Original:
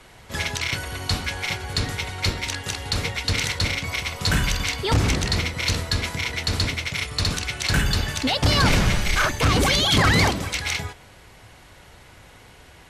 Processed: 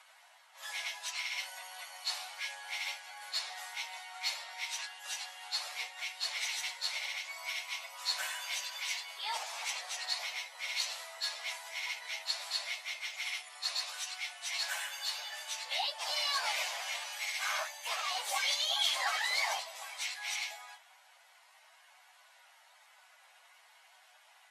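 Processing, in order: steep high-pass 650 Hz 48 dB/oct; dynamic EQ 1400 Hz, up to -7 dB, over -39 dBFS, Q 2.2; plain phase-vocoder stretch 1.9×; gain -8 dB

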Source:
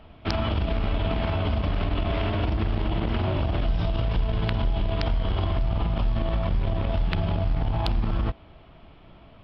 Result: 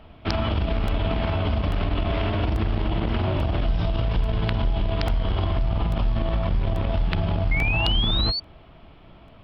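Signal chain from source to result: painted sound rise, 7.51–8.4, 2100–4600 Hz -28 dBFS; crackling interface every 0.84 s, samples 64, repeat, from 0.88; gain +1.5 dB

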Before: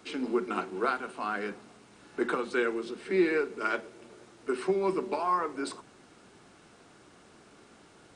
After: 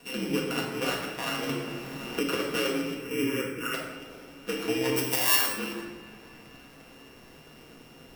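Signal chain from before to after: sample sorter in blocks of 16 samples; 4.96–5.49 RIAA curve recording; in parallel at +1 dB: compressor, threshold -36 dBFS, peak gain reduction 22.5 dB; on the sum: requantised 10-bit, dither none; 2.97–3.74 fixed phaser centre 1700 Hz, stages 4; ring modulator 65 Hz; band-limited delay 0.243 s, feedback 81%, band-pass 1400 Hz, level -23 dB; reverb RT60 1.2 s, pre-delay 4 ms, DRR -1.5 dB; 1.49–2.44 three-band squash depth 70%; gain -3 dB

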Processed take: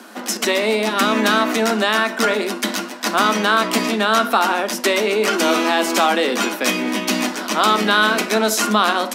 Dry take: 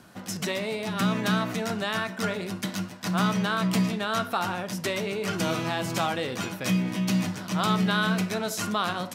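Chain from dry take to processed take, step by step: Chebyshev high-pass 210 Hz, order 8; in parallel at -1 dB: limiter -21.5 dBFS, peak gain reduction 9 dB; on the sum: gain +8 dB

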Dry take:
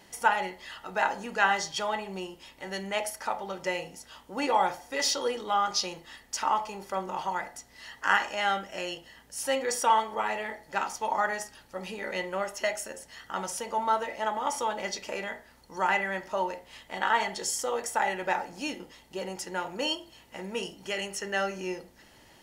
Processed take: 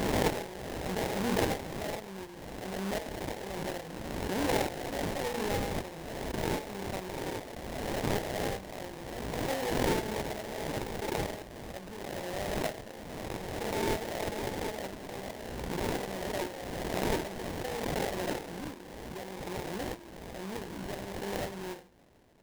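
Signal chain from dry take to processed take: sample-rate reducer 1300 Hz, jitter 20%; backwards sustainer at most 24 dB/s; gain -7 dB

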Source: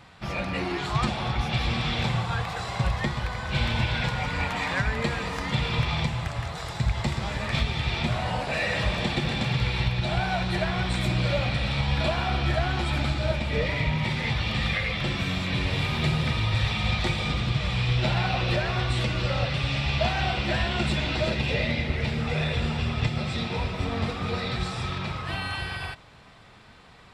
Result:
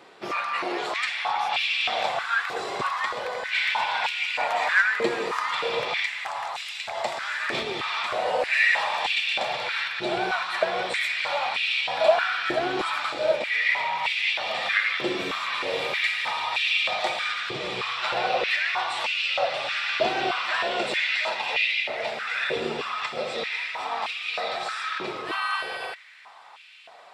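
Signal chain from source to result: stepped high-pass 3.2 Hz 380–2600 Hz

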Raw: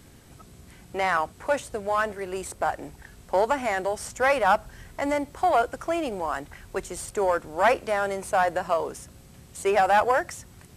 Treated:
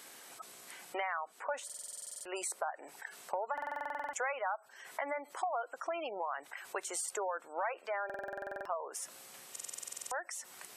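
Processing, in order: HPF 680 Hz 12 dB/oct; spectral gate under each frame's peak -20 dB strong; high shelf 11000 Hz +6 dB; compressor 5:1, threshold -39 dBFS, peak gain reduction 19.5 dB; stuck buffer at 1.65/3.53/8.05/9.51, samples 2048, times 12; gain +3.5 dB

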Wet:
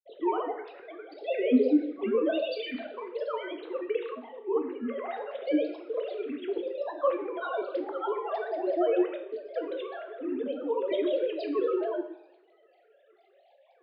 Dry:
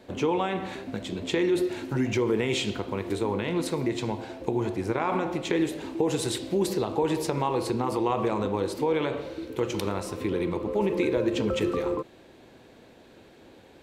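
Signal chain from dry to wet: sine-wave speech; grains, grains 20/s, pitch spread up and down by 7 st; two-slope reverb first 0.66 s, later 1.8 s, from -22 dB, DRR 5.5 dB; gain -2.5 dB

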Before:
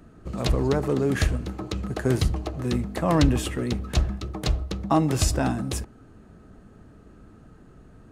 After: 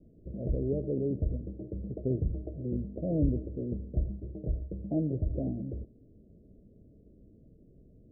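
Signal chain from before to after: steep low-pass 620 Hz 72 dB/oct; gain -7.5 dB

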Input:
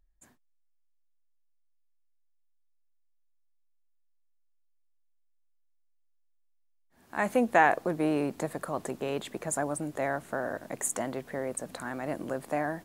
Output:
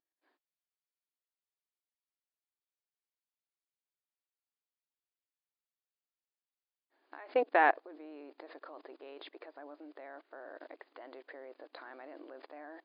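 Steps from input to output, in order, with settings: level quantiser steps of 24 dB; brick-wall FIR band-pass 270–5000 Hz

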